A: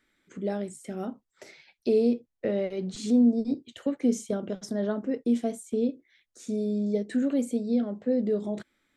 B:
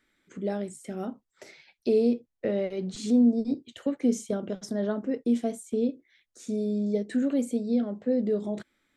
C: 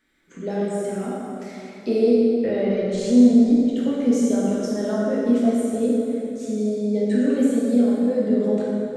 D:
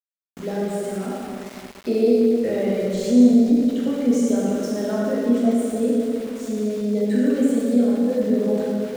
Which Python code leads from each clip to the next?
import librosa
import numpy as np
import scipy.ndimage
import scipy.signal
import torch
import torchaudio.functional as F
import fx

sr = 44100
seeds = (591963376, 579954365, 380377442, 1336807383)

y1 = x
y2 = fx.rev_plate(y1, sr, seeds[0], rt60_s=3.1, hf_ratio=0.6, predelay_ms=0, drr_db=-7.0)
y3 = fx.room_flutter(y2, sr, wall_m=11.7, rt60_s=0.32)
y3 = np.where(np.abs(y3) >= 10.0 ** (-35.5 / 20.0), y3, 0.0)